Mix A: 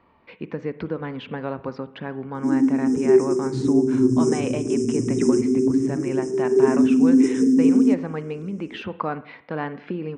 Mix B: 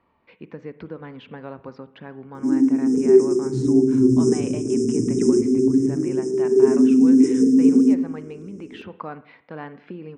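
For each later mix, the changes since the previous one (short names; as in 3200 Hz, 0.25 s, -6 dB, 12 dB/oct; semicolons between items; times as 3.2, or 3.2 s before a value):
speech -7.0 dB; background: send +8.5 dB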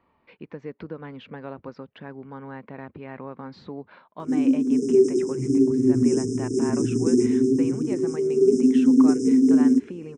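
background: entry +1.85 s; reverb: off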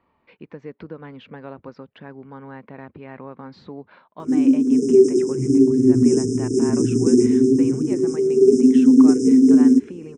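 background +4.5 dB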